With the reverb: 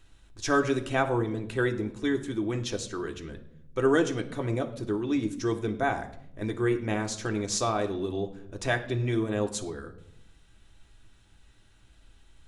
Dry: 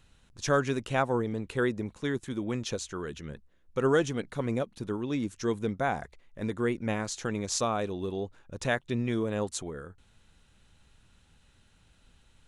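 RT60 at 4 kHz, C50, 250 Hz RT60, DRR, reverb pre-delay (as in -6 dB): 0.55 s, 12.5 dB, 1.1 s, 3.5 dB, 3 ms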